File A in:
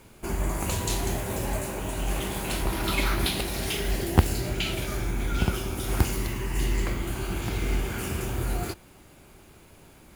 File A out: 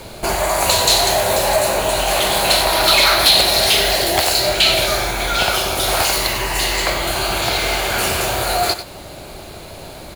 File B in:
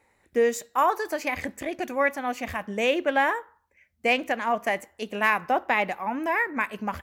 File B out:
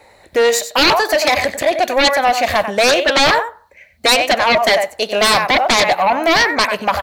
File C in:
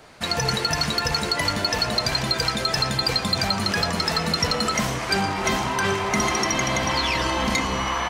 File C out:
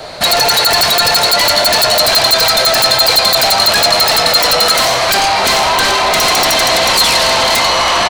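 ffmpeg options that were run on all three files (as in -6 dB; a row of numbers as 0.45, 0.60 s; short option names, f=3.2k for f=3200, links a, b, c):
-filter_complex "[0:a]acrossover=split=560|1000[a][b][c];[a]acompressor=threshold=-40dB:ratio=10[d];[d][b][c]amix=inputs=3:normalize=0,equalizer=f=250:t=o:w=0.67:g=-3,equalizer=f=630:t=o:w=0.67:g=10,equalizer=f=4k:t=o:w=0.67:g=5,aecho=1:1:94:0.251,aeval=exprs='0.596*sin(PI/2*6.31*val(0)/0.596)':c=same,equalizer=f=4.2k:t=o:w=0.21:g=8,volume=-4.5dB"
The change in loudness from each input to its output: +14.0, +12.5, +13.5 LU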